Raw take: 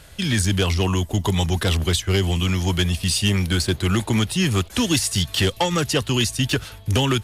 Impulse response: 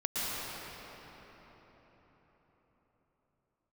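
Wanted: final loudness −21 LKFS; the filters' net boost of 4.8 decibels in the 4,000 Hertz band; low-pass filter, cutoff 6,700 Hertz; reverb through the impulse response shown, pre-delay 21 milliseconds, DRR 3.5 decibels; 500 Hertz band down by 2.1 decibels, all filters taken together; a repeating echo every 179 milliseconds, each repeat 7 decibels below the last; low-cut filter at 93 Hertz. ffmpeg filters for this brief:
-filter_complex "[0:a]highpass=93,lowpass=6700,equalizer=frequency=500:width_type=o:gain=-3,equalizer=frequency=4000:width_type=o:gain=7,aecho=1:1:179|358|537|716|895:0.447|0.201|0.0905|0.0407|0.0183,asplit=2[link_01][link_02];[1:a]atrim=start_sample=2205,adelay=21[link_03];[link_02][link_03]afir=irnorm=-1:irlink=0,volume=-12dB[link_04];[link_01][link_04]amix=inputs=2:normalize=0,volume=-3dB"

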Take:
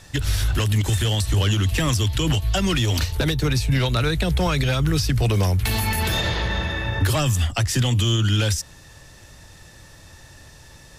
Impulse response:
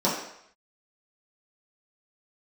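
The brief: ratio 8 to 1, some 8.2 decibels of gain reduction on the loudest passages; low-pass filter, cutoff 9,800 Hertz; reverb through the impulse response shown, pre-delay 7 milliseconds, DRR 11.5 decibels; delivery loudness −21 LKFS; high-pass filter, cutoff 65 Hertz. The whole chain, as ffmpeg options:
-filter_complex "[0:a]highpass=65,lowpass=9800,acompressor=threshold=-25dB:ratio=8,asplit=2[link_01][link_02];[1:a]atrim=start_sample=2205,adelay=7[link_03];[link_02][link_03]afir=irnorm=-1:irlink=0,volume=-26dB[link_04];[link_01][link_04]amix=inputs=2:normalize=0,volume=7.5dB"

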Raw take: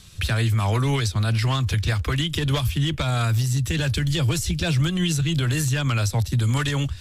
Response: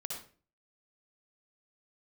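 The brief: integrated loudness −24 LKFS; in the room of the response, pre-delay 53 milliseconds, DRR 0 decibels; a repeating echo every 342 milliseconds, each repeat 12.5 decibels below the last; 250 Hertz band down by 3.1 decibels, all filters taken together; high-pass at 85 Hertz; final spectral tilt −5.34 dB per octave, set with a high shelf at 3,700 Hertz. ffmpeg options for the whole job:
-filter_complex "[0:a]highpass=85,equalizer=frequency=250:width_type=o:gain=-5.5,highshelf=frequency=3700:gain=-5,aecho=1:1:342|684|1026:0.237|0.0569|0.0137,asplit=2[link_01][link_02];[1:a]atrim=start_sample=2205,adelay=53[link_03];[link_02][link_03]afir=irnorm=-1:irlink=0,volume=0.5dB[link_04];[link_01][link_04]amix=inputs=2:normalize=0,volume=-3dB"

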